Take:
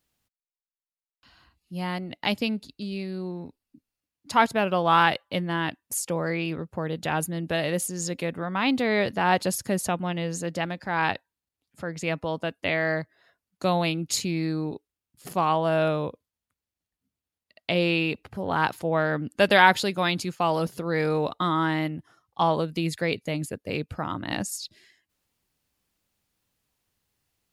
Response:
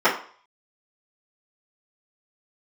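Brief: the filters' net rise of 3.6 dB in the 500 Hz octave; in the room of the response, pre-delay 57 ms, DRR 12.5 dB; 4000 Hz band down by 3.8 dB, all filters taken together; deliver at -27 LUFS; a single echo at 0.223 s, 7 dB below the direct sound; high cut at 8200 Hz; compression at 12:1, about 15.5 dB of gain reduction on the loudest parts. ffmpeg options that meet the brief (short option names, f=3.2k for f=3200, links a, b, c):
-filter_complex "[0:a]lowpass=8.2k,equalizer=f=500:t=o:g=4.5,equalizer=f=4k:t=o:g=-5,acompressor=threshold=-27dB:ratio=12,aecho=1:1:223:0.447,asplit=2[a][b];[1:a]atrim=start_sample=2205,adelay=57[c];[b][c]afir=irnorm=-1:irlink=0,volume=-33.5dB[d];[a][d]amix=inputs=2:normalize=0,volume=5dB"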